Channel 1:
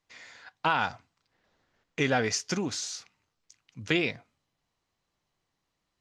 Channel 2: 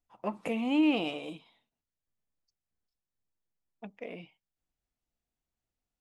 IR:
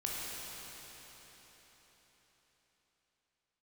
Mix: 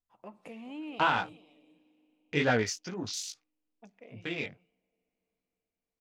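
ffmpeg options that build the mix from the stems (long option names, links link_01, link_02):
-filter_complex "[0:a]afwtdn=0.0112,flanger=delay=16.5:depth=5.7:speed=2.3,tremolo=f=1.4:d=0.7,adelay=350,volume=3dB[link_01];[1:a]acompressor=threshold=-46dB:ratio=1.5,volume=-8dB,asplit=3[link_02][link_03][link_04];[link_03]volume=-21dB[link_05];[link_04]volume=-15.5dB[link_06];[2:a]atrim=start_sample=2205[link_07];[link_05][link_07]afir=irnorm=-1:irlink=0[link_08];[link_06]aecho=0:1:420:1[link_09];[link_01][link_02][link_08][link_09]amix=inputs=4:normalize=0"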